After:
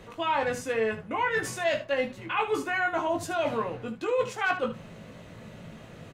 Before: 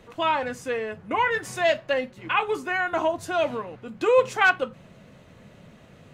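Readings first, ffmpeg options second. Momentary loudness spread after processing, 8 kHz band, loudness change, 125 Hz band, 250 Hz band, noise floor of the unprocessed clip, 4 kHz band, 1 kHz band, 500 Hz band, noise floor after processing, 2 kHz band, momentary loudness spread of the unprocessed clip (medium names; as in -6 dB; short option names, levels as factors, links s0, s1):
19 LU, +0.5 dB, -4.0 dB, +1.5 dB, -0.5 dB, -52 dBFS, -4.5 dB, -4.0 dB, -4.0 dB, -48 dBFS, -5.0 dB, 9 LU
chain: -af "areverse,acompressor=threshold=0.0355:ratio=6,areverse,aecho=1:1:18|75:0.596|0.266,volume=1.41"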